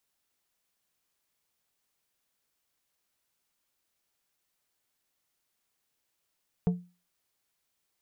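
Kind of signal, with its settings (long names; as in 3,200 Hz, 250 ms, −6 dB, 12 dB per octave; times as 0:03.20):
struck glass plate, lowest mode 177 Hz, decay 0.32 s, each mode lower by 9 dB, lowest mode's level −19 dB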